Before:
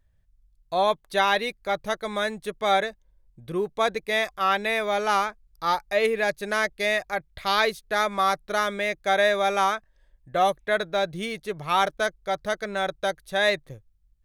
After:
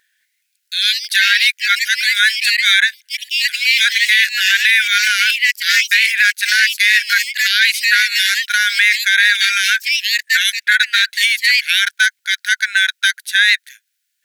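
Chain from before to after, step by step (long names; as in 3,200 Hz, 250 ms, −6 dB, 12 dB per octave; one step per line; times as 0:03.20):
linear-phase brick-wall high-pass 1,400 Hz
delay with pitch and tempo change per echo 210 ms, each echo +3 semitones, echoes 2, each echo −6 dB
boost into a limiter +21.5 dB
level −1 dB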